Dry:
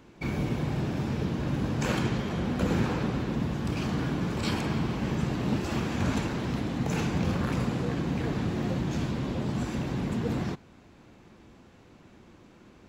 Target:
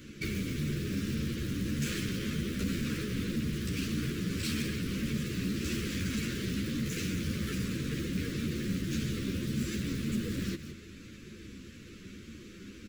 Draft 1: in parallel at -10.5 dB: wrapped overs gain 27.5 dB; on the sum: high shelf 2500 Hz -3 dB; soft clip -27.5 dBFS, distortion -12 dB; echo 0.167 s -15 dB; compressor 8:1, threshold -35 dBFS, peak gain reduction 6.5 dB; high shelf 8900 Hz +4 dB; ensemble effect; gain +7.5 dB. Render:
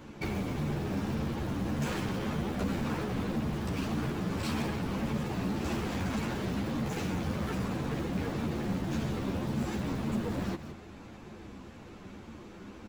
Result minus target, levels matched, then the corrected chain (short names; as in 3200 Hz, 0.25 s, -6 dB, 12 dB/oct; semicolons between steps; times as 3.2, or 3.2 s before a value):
1000 Hz band +12.5 dB; 4000 Hz band -4.5 dB
in parallel at -10.5 dB: wrapped overs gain 27.5 dB; on the sum: high shelf 2500 Hz +4 dB; soft clip -27.5 dBFS, distortion -12 dB; echo 0.167 s -15 dB; compressor 8:1, threshold -35 dBFS, peak gain reduction 6.5 dB; Butterworth band-stop 810 Hz, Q 0.7; high shelf 8900 Hz +4 dB; ensemble effect; gain +7.5 dB